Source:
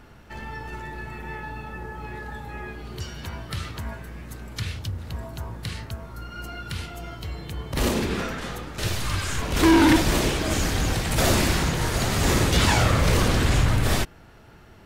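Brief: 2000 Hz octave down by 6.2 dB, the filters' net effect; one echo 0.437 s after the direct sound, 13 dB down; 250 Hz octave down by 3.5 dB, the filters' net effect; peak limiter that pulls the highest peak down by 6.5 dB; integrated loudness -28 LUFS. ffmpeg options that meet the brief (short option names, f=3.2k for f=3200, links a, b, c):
-af "equalizer=f=250:t=o:g=-5,equalizer=f=2k:t=o:g=-8,alimiter=limit=-16.5dB:level=0:latency=1,aecho=1:1:437:0.224,volume=1dB"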